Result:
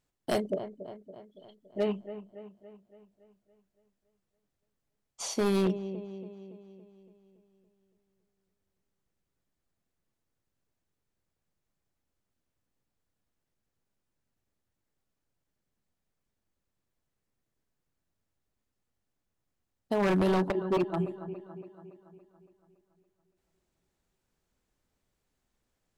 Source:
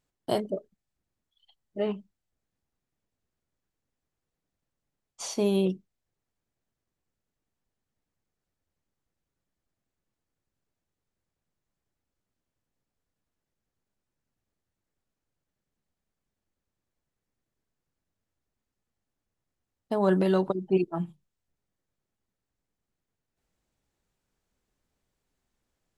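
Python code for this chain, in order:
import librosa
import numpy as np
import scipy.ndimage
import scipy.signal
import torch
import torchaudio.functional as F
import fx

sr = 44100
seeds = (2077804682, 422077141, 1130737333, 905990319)

y = fx.echo_wet_lowpass(x, sr, ms=282, feedback_pct=55, hz=2200.0, wet_db=-12.5)
y = 10.0 ** (-20.0 / 20.0) * (np.abs((y / 10.0 ** (-20.0 / 20.0) + 3.0) % 4.0 - 2.0) - 1.0)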